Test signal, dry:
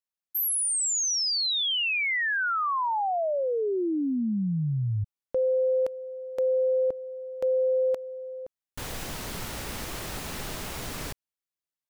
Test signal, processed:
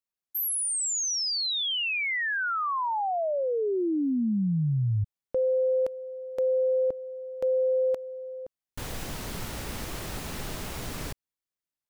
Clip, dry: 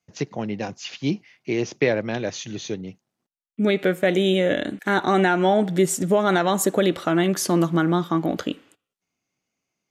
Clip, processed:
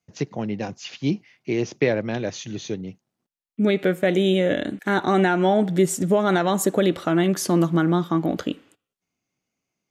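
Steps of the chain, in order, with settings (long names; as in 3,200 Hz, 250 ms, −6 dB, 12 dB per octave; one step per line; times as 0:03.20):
low-shelf EQ 410 Hz +4 dB
level −2 dB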